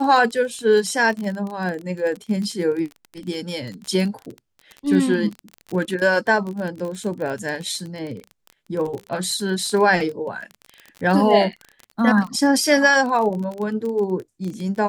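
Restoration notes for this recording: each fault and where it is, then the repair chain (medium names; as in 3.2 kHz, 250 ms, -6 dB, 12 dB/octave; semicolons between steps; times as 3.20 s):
crackle 25 per s -26 dBFS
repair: de-click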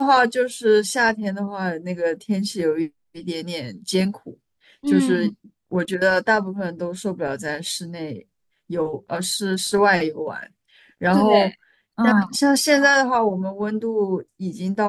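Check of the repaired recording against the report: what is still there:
nothing left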